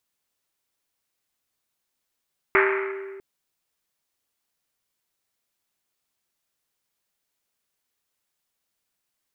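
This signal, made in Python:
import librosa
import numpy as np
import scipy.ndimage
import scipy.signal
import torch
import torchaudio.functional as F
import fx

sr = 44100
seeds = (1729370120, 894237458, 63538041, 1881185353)

y = fx.risset_drum(sr, seeds[0], length_s=0.65, hz=390.0, decay_s=2.09, noise_hz=1700.0, noise_width_hz=1200.0, noise_pct=45)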